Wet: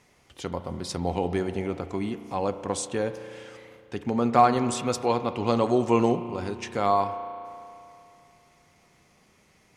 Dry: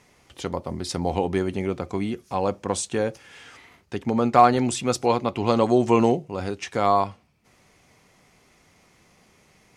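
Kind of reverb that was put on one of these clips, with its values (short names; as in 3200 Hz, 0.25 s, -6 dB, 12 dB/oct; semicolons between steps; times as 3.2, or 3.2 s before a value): spring tank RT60 2.7 s, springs 34 ms, chirp 50 ms, DRR 10.5 dB; gain -3.5 dB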